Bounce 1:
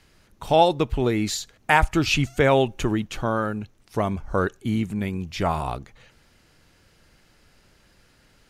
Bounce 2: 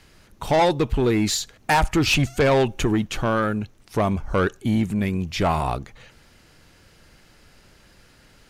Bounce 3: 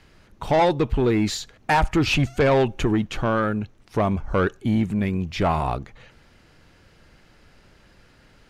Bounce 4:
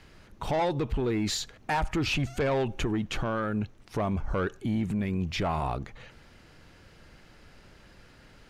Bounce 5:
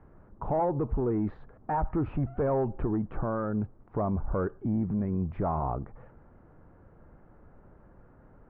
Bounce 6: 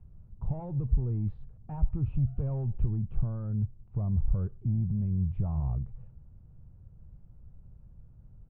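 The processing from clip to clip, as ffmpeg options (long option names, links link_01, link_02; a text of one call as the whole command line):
ffmpeg -i in.wav -af "asoftclip=type=tanh:threshold=-18dB,volume=5dB" out.wav
ffmpeg -i in.wav -af "highshelf=frequency=5600:gain=-11.5" out.wav
ffmpeg -i in.wav -af "alimiter=limit=-22dB:level=0:latency=1:release=71" out.wav
ffmpeg -i in.wav -af "lowpass=frequency=1200:width=0.5412,lowpass=frequency=1200:width=1.3066" out.wav
ffmpeg -i in.wav -af "firequalizer=gain_entry='entry(120,0);entry(280,-21);entry(1800,-30);entry(2600,-15)':delay=0.05:min_phase=1,volume=6dB" out.wav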